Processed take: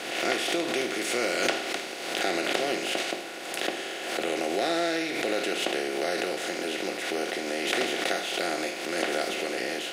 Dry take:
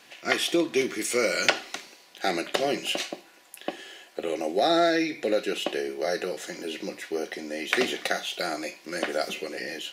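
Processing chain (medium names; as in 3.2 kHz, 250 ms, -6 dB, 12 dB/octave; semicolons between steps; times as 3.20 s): spectral levelling over time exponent 0.4; swell ahead of each attack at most 42 dB/s; trim -9 dB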